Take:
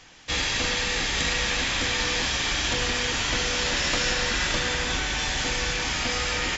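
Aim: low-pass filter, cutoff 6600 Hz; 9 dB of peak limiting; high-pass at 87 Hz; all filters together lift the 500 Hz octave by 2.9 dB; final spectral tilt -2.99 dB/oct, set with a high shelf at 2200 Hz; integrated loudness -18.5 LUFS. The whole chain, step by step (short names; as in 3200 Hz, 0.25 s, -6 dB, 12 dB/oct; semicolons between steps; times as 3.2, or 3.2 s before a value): HPF 87 Hz; LPF 6600 Hz; bell 500 Hz +3.5 dB; high shelf 2200 Hz -7 dB; gain +12 dB; limiter -10.5 dBFS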